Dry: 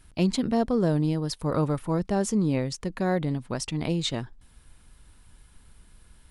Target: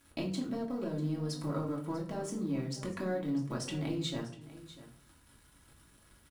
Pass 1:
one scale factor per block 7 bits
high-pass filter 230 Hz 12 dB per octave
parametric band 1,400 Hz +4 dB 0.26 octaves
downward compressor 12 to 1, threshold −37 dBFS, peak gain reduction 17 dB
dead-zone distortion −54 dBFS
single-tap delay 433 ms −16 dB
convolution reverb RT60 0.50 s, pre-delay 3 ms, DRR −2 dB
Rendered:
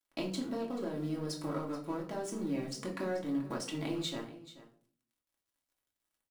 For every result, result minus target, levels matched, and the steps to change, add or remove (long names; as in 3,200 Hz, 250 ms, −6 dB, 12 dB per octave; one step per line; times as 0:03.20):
echo 212 ms early; 125 Hz band −4.5 dB; dead-zone distortion: distortion +6 dB
change: single-tap delay 645 ms −16 dB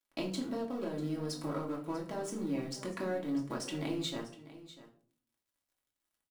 125 Hz band −4.5 dB; dead-zone distortion: distortion +6 dB
change: high-pass filter 91 Hz 12 dB per octave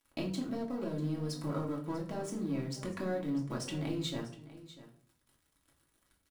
dead-zone distortion: distortion +6 dB
change: dead-zone distortion −61 dBFS